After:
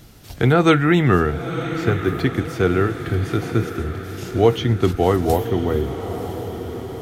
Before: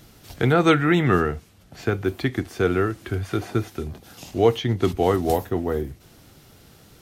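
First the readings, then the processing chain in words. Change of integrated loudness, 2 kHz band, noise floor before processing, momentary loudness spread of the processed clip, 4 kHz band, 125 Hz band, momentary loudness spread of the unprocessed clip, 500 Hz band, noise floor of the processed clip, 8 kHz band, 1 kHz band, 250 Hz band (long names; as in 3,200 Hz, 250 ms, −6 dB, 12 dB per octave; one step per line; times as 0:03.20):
+2.5 dB, +2.5 dB, −52 dBFS, 13 LU, +2.5 dB, +5.5 dB, 15 LU, +3.0 dB, −36 dBFS, +2.5 dB, +2.5 dB, +3.5 dB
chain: low-shelf EQ 140 Hz +5 dB
on a send: feedback delay with all-pass diffusion 1,000 ms, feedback 56%, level −10 dB
on the sum: level +2 dB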